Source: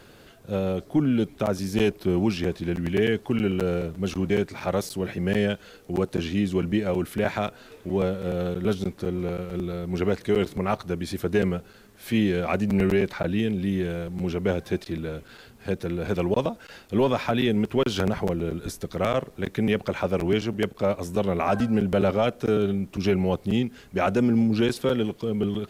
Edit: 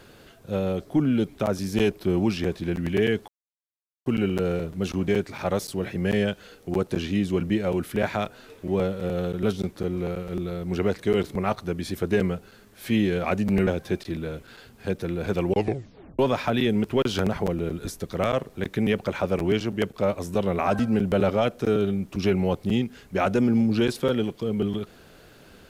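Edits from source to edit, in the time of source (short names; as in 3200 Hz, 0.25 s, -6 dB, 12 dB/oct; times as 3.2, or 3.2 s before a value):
3.28 insert silence 0.78 s
12.89–14.48 cut
16.27 tape stop 0.73 s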